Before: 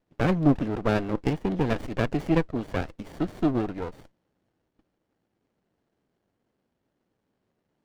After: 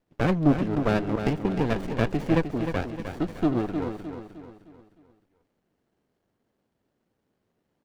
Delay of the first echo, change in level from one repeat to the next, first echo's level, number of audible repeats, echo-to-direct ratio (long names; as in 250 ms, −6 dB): 307 ms, −7.5 dB, −8.0 dB, 4, −7.0 dB